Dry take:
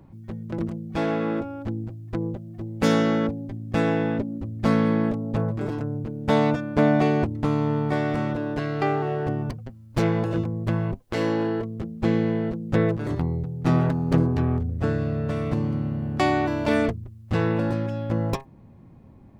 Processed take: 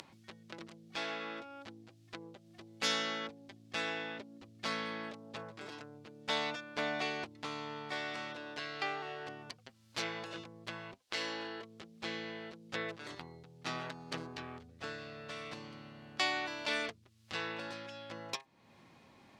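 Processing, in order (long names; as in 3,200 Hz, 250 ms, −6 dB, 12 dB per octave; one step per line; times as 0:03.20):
upward compression, threshold −24 dBFS
resonant band-pass 4,200 Hz, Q 1.1
level +1.5 dB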